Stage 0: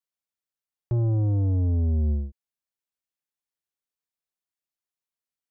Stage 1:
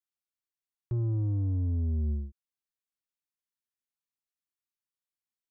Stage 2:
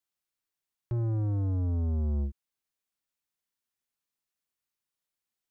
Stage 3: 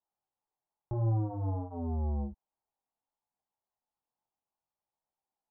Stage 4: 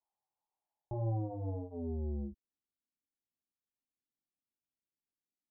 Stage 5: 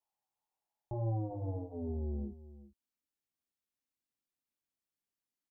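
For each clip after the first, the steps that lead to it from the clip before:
high-order bell 620 Hz -8.5 dB 1.1 oct; trim -6 dB
peak limiter -33 dBFS, peak gain reduction 7 dB; waveshaping leveller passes 1; trim +6.5 dB
resonant low-pass 840 Hz, resonance Q 4.9; chorus voices 2, 0.59 Hz, delay 20 ms, depth 4.9 ms; trim +1.5 dB
low-pass sweep 930 Hz -> 290 Hz, 0.52–2.58 s; trim -6 dB
delay 391 ms -16 dB

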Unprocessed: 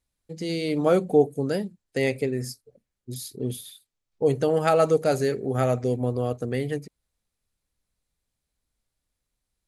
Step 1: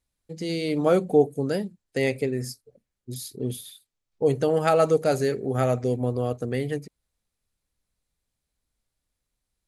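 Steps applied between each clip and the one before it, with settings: no audible change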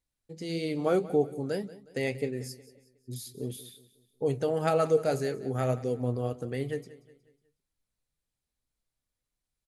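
flange 1.7 Hz, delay 5.7 ms, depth 3.3 ms, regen +71%; feedback delay 182 ms, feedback 43%, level -18 dB; trim -1.5 dB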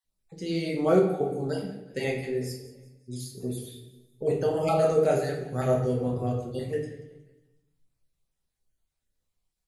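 random holes in the spectrogram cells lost 24%; simulated room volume 190 m³, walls mixed, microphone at 1.1 m

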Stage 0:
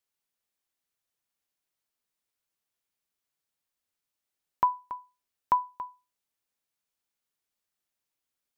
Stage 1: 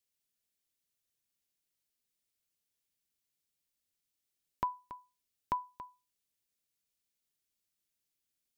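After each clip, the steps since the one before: peaking EQ 990 Hz -11.5 dB 1.9 oct; trim +1.5 dB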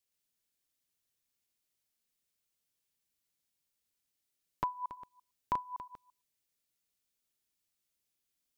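chunks repeated in reverse 113 ms, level -4.5 dB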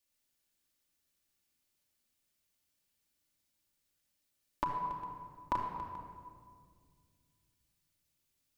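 simulated room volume 3700 m³, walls mixed, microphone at 2.5 m; trim +1 dB

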